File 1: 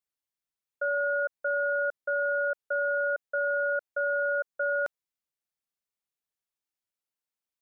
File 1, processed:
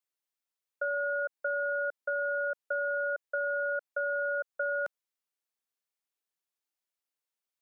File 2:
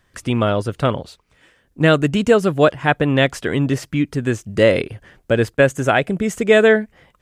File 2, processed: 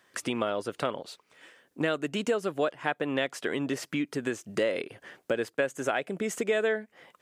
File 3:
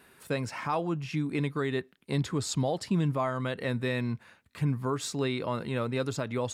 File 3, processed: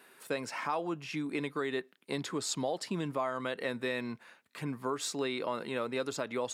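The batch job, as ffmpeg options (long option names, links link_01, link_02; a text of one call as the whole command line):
ffmpeg -i in.wav -af "highpass=300,acompressor=threshold=-29dB:ratio=3" out.wav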